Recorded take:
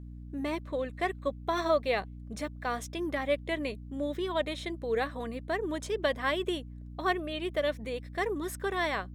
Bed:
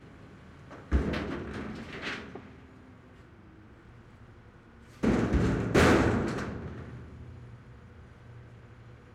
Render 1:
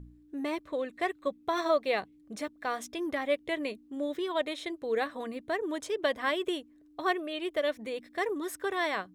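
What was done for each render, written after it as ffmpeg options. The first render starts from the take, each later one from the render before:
ffmpeg -i in.wav -af "bandreject=frequency=60:width_type=h:width=4,bandreject=frequency=120:width_type=h:width=4,bandreject=frequency=180:width_type=h:width=4,bandreject=frequency=240:width_type=h:width=4" out.wav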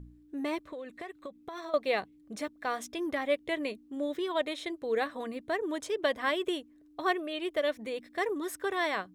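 ffmpeg -i in.wav -filter_complex "[0:a]asettb=1/sr,asplit=3[link_01][link_02][link_03];[link_01]atrim=end=0.634[link_04];[link_02]atrim=start=0.63:end=1.74,asetpts=PTS-STARTPTS,afade=type=in:duration=0.004:curve=qsin,afade=type=out:start_time=1.106:duration=0.004:curve=qsin,acompressor=threshold=-37dB:ratio=10:attack=3.2:release=140:knee=1:detection=peak[link_05];[link_03]atrim=start=1.736[link_06];[link_04][link_05]acrossfade=duration=0.004:curve1=hsin:curve2=qsin[link_07];[link_07][link_06]acrossfade=duration=0.004:curve1=qsin:curve2=hsin" out.wav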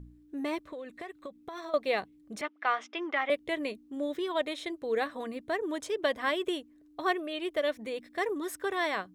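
ffmpeg -i in.wav -filter_complex "[0:a]asettb=1/sr,asplit=3[link_01][link_02][link_03];[link_01]atrim=end=2.414[link_04];[link_02]atrim=start=2.41:end=3.3,asetpts=PTS-STARTPTS,afade=type=in:duration=0.004:curve=qsin,afade=type=out:start_time=0.886:duration=0.004:curve=qsin,highpass=frequency=330:width=0.5412,highpass=frequency=330:width=1.3066,equalizer=frequency=510:width_type=q:width=4:gain=-4,equalizer=frequency=850:width_type=q:width=4:gain=5,equalizer=frequency=1300:width_type=q:width=4:gain=9,equalizer=frequency=2100:width_type=q:width=4:gain=7,equalizer=frequency=2900:width_type=q:width=4:gain=7,equalizer=frequency=4200:width_type=q:width=4:gain=-6,lowpass=frequency=5100:width=0.5412,lowpass=frequency=5100:width=1.3066[link_05];[link_03]atrim=start=3.296[link_06];[link_04][link_05]acrossfade=duration=0.004:curve1=hsin:curve2=qsin[link_07];[link_07][link_06]acrossfade=duration=0.004:curve1=qsin:curve2=hsin" out.wav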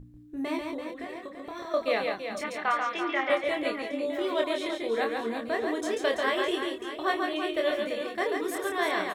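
ffmpeg -i in.wav -filter_complex "[0:a]asplit=2[link_01][link_02];[link_02]adelay=26,volume=-4dB[link_03];[link_01][link_03]amix=inputs=2:normalize=0,aecho=1:1:140|336|610.4|994.6|1532:0.631|0.398|0.251|0.158|0.1" out.wav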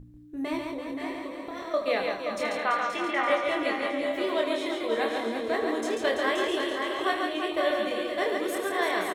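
ffmpeg -i in.wav -af "aecho=1:1:77|526|551|771:0.237|0.473|0.316|0.224" out.wav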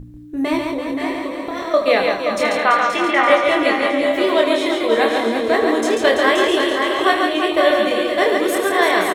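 ffmpeg -i in.wav -af "volume=11.5dB" out.wav

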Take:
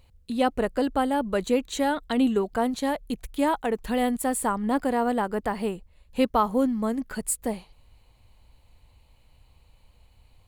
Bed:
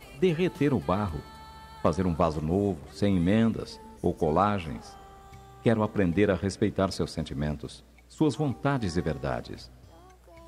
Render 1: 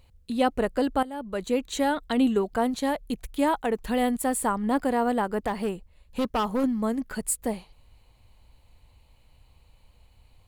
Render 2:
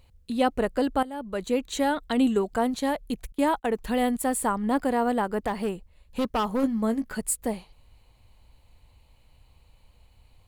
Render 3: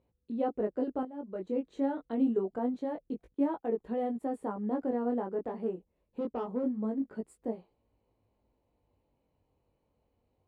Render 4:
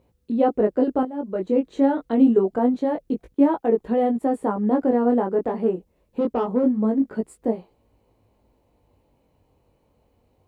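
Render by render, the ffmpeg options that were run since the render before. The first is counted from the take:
ffmpeg -i in.wav -filter_complex "[0:a]asettb=1/sr,asplit=3[link_01][link_02][link_03];[link_01]atrim=end=5.474[link_04];[link_02]atrim=start=5.47:end=6.64,asetpts=PTS-STARTPTS,afade=type=in:duration=0.004:curve=qsin,afade=type=out:start_time=1.166:duration=0.004:curve=qsin,asoftclip=type=hard:threshold=-21dB[link_05];[link_03]atrim=start=6.636[link_06];[link_04][link_05]acrossfade=duration=0.004:curve1=hsin:curve2=qsin[link_07];[link_07][link_06]acrossfade=duration=0.004:curve1=qsin:curve2=hsin,asplit=2[link_08][link_09];[link_08]atrim=end=1.03,asetpts=PTS-STARTPTS,afade=type=out:start_time=1.026:duration=0.004:curve=hsin:silence=0.158489[link_10];[link_09]atrim=start=1.03,asetpts=PTS-STARTPTS,afade=type=in:duration=0.7:silence=0.158489[link_11];[link_10][link_11]concat=n=2:v=0:a=1" out.wav
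ffmpeg -i in.wav -filter_complex "[0:a]asettb=1/sr,asplit=3[link_01][link_02][link_03];[link_01]atrim=end=2.154[link_04];[link_02]atrim=start=2.15:end=2.59,asetpts=PTS-STARTPTS,afade=type=in:duration=0.004:curve=qsin,afade=type=out:start_time=0.436:duration=0.004:curve=qsin,equalizer=frequency=7800:width=2.6:gain=6[link_05];[link_03]atrim=start=2.586[link_06];[link_04][link_05]acrossfade=duration=0.004:curve1=hsin:curve2=qsin[link_07];[link_07][link_06]acrossfade=duration=0.004:curve1=qsin:curve2=hsin,asettb=1/sr,asplit=3[link_08][link_09][link_10];[link_08]atrim=end=3.324[link_11];[link_09]atrim=start=3.32:end=3.73,asetpts=PTS-STARTPTS,afade=type=in:duration=0.004:curve=qsin,afade=type=out:start_time=0.406:duration=0.004:curve=qsin,agate=range=-21dB:threshold=-37dB:ratio=16:release=100:detection=peak[link_12];[link_10]atrim=start=3.726[link_13];[link_11][link_12]acrossfade=duration=0.004:curve1=hsin:curve2=qsin[link_14];[link_14][link_13]acrossfade=duration=0.004:curve1=qsin:curve2=hsin,asettb=1/sr,asplit=3[link_15][link_16][link_17];[link_15]atrim=end=6.614[link_18];[link_16]atrim=start=6.61:end=7.2,asetpts=PTS-STARTPTS,afade=type=in:duration=0.004:curve=qsin,afade=type=out:start_time=0.586:duration=0.004:curve=qsin,asplit=2[link_19][link_20];[link_20]adelay=18,volume=-10dB[link_21];[link_19][link_21]amix=inputs=2:normalize=0,atrim=end_sample=26019[link_22];[link_17]atrim=start=7.196[link_23];[link_18][link_22]acrossfade=duration=0.004:curve1=hsin:curve2=qsin[link_24];[link_24][link_23]acrossfade=duration=0.004:curve1=qsin:curve2=hsin" out.wav
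ffmpeg -i in.wav -af "flanger=delay=17.5:depth=4.6:speed=0.26,bandpass=frequency=360:width_type=q:width=1.4:csg=0" out.wav
ffmpeg -i in.wav -af "volume=12dB" out.wav

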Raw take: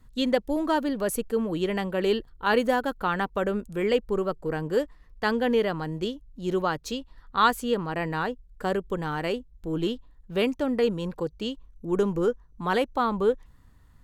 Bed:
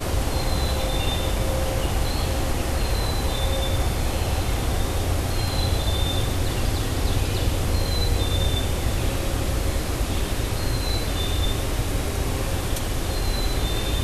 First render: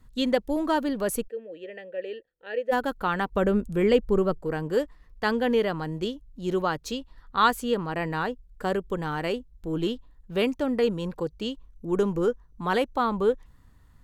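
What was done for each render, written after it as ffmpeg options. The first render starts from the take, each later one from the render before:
ffmpeg -i in.wav -filter_complex "[0:a]asplit=3[link_01][link_02][link_03];[link_01]afade=type=out:start_time=1.27:duration=0.02[link_04];[link_02]asplit=3[link_05][link_06][link_07];[link_05]bandpass=frequency=530:width_type=q:width=8,volume=0dB[link_08];[link_06]bandpass=frequency=1840:width_type=q:width=8,volume=-6dB[link_09];[link_07]bandpass=frequency=2480:width_type=q:width=8,volume=-9dB[link_10];[link_08][link_09][link_10]amix=inputs=3:normalize=0,afade=type=in:start_time=1.27:duration=0.02,afade=type=out:start_time=2.71:duration=0.02[link_11];[link_03]afade=type=in:start_time=2.71:duration=0.02[link_12];[link_04][link_11][link_12]amix=inputs=3:normalize=0,asettb=1/sr,asplit=3[link_13][link_14][link_15];[link_13]atrim=end=3.324[link_16];[link_14]atrim=start=3.32:end=4.39,asetpts=PTS-STARTPTS,afade=type=in:duration=0.004:curve=qsin,afade=type=out:start_time=1.066:duration=0.004:curve=qsin,lowshelf=frequency=350:gain=8[link_17];[link_15]atrim=start=4.386[link_18];[link_16][link_17]acrossfade=duration=0.004:curve1=hsin:curve2=qsin[link_19];[link_19][link_18]acrossfade=duration=0.004:curve1=qsin:curve2=hsin" out.wav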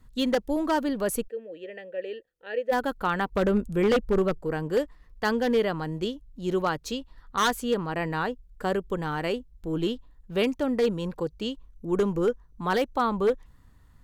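ffmpeg -i in.wav -af "aeval=exprs='0.168*(abs(mod(val(0)/0.168+3,4)-2)-1)':channel_layout=same" out.wav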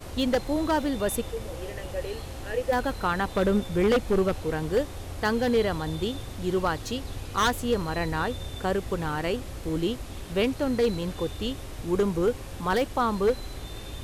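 ffmpeg -i in.wav -i bed.wav -filter_complex "[1:a]volume=-14dB[link_01];[0:a][link_01]amix=inputs=2:normalize=0" out.wav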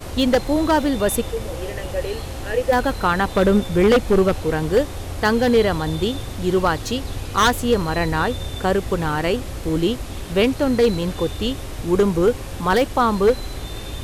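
ffmpeg -i in.wav -af "volume=7.5dB" out.wav

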